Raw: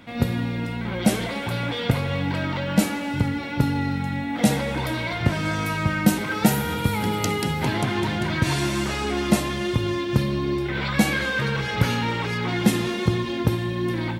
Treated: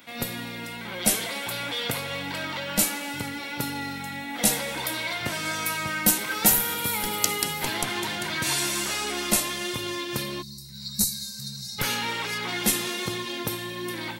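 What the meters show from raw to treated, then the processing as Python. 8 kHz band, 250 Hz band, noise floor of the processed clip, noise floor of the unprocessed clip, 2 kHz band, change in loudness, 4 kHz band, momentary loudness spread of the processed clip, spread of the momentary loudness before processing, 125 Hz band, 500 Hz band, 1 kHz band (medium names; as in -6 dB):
+8.5 dB, -10.0 dB, -38 dBFS, -29 dBFS, -2.5 dB, -2.5 dB, +2.0 dB, 11 LU, 5 LU, -14.0 dB, -7.0 dB, -4.0 dB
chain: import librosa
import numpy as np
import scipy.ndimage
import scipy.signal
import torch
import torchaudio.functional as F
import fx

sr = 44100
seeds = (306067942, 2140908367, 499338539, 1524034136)

p1 = fx.spec_box(x, sr, start_s=10.42, length_s=1.37, low_hz=220.0, high_hz=3700.0, gain_db=-30)
p2 = fx.riaa(p1, sr, side='recording')
p3 = fx.schmitt(p2, sr, flips_db=-9.0)
p4 = p2 + F.gain(torch.from_numpy(p3), -6.0).numpy()
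y = F.gain(torch.from_numpy(p4), -3.5).numpy()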